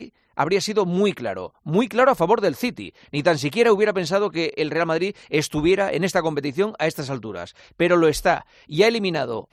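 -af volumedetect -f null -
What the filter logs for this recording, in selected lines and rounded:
mean_volume: -21.4 dB
max_volume: -3.8 dB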